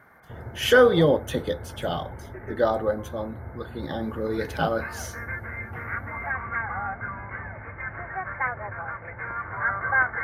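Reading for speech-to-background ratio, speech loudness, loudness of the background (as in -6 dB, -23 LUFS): 8.0 dB, -24.5 LUFS, -32.5 LUFS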